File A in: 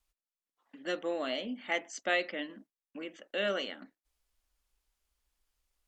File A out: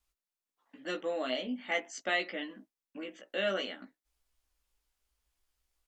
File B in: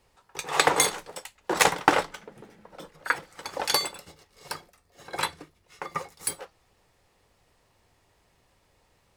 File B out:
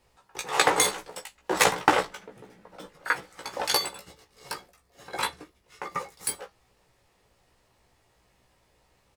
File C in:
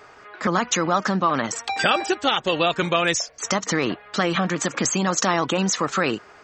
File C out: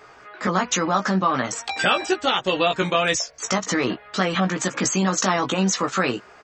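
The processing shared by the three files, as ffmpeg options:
-filter_complex "[0:a]asplit=2[a][b];[b]adelay=16,volume=-4dB[c];[a][c]amix=inputs=2:normalize=0,volume=-1.5dB"

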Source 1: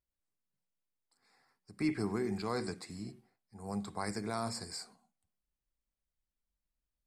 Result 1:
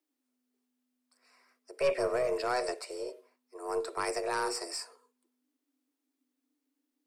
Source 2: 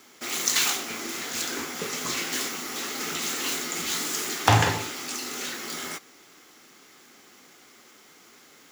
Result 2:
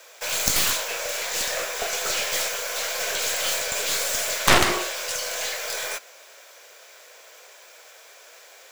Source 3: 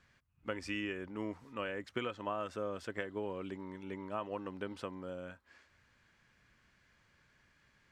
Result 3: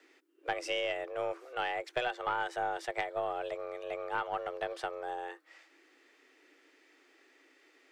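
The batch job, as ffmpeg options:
-af "acontrast=51,afreqshift=250,aeval=exprs='1.12*(cos(1*acos(clip(val(0)/1.12,-1,1)))-cos(1*PI/2))+0.224*(cos(6*acos(clip(val(0)/1.12,-1,1)))-cos(6*PI/2))+0.398*(cos(7*acos(clip(val(0)/1.12,-1,1)))-cos(7*PI/2))':c=same,volume=-4.5dB"

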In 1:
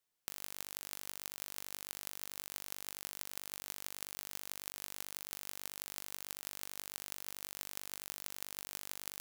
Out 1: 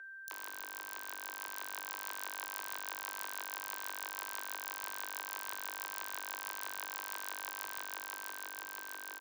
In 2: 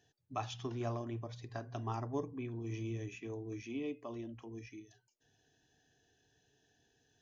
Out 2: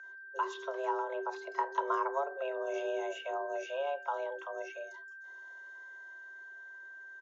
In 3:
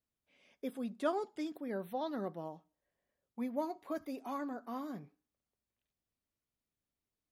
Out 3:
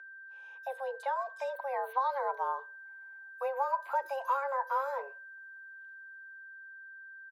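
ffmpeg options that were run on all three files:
-filter_complex "[0:a]highshelf=f=4k:g=-4.5,acrossover=split=210[a][b];[b]acompressor=threshold=-40dB:ratio=6[c];[a][c]amix=inputs=2:normalize=0,equalizer=f=720:t=o:w=0.49:g=12,acrossover=split=4200[d][e];[d]adelay=30[f];[f][e]amix=inputs=2:normalize=0,acrossover=split=240[g][h];[h]dynaudnorm=f=260:g=11:m=4.5dB[i];[g][i]amix=inputs=2:normalize=0,aeval=exprs='val(0)+0.00355*sin(2*PI*1300*n/s)':c=same,afreqshift=270,volume=2.5dB"

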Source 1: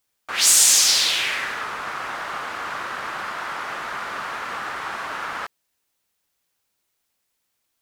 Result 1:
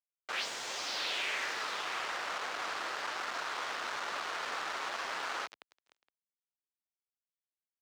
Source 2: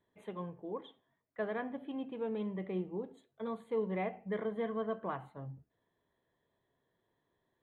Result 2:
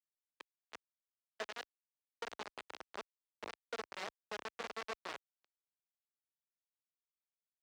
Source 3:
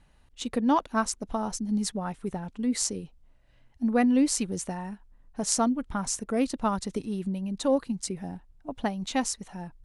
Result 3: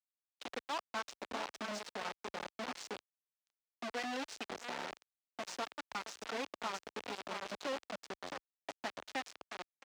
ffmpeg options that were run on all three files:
-filter_complex "[0:a]asoftclip=type=hard:threshold=-15dB,acrossover=split=930|1900[a][b][c];[a]acompressor=threshold=-35dB:ratio=4[d];[b]acompressor=threshold=-40dB:ratio=4[e];[c]acompressor=threshold=-26dB:ratio=4[f];[d][e][f]amix=inputs=3:normalize=0,aemphasis=mode=reproduction:type=50fm,aecho=1:1:667:0.422,aeval=exprs='sgn(val(0))*max(abs(val(0))-0.00106,0)':c=same,flanger=delay=3.6:depth=6.7:regen=-51:speed=1.2:shape=triangular,acrusher=bits=5:mix=0:aa=0.000001,agate=range=-22dB:threshold=-56dB:ratio=16:detection=peak,highpass=46,acrossover=split=330 6600:gain=0.158 1 0.0794[g][h][i];[g][h][i]amix=inputs=3:normalize=0,volume=-1dB"

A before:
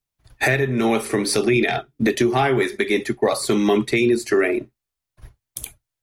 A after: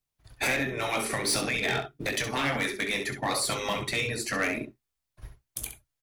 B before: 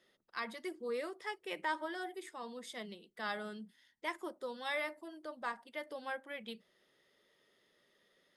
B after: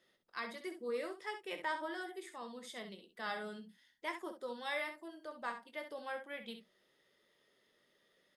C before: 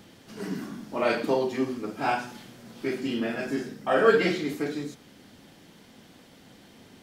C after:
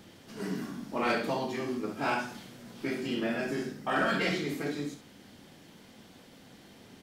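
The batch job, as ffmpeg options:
-af "afftfilt=real='re*lt(hypot(re,im),0.398)':imag='im*lt(hypot(re,im),0.398)':win_size=1024:overlap=0.75,asoftclip=type=hard:threshold=-20dB,aecho=1:1:21|66:0.299|0.355,volume=-2dB"

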